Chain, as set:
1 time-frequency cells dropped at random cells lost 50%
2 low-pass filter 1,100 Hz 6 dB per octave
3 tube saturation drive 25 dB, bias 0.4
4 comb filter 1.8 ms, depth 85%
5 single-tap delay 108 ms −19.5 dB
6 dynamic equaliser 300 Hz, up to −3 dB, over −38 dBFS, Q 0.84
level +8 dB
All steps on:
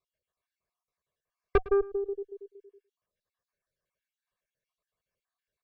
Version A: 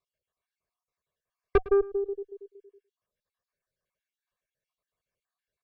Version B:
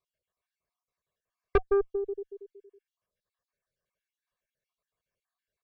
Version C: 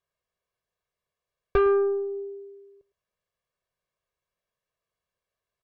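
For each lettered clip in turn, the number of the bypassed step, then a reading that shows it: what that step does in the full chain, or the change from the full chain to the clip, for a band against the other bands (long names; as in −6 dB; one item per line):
6, 250 Hz band +2.0 dB
5, change in momentary loudness spread +1 LU
1, 125 Hz band −5.5 dB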